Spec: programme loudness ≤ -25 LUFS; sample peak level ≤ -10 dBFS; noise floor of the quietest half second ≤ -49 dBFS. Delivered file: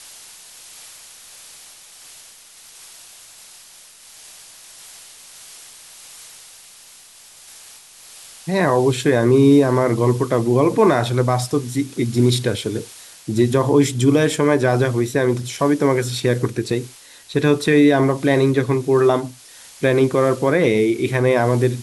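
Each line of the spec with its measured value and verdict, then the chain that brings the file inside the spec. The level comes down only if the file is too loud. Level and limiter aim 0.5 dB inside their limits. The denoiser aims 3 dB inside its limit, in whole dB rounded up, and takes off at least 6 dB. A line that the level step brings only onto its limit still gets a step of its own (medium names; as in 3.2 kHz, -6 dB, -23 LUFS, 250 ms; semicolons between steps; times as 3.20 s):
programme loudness -17.5 LUFS: fail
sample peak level -4.5 dBFS: fail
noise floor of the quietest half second -45 dBFS: fail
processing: trim -8 dB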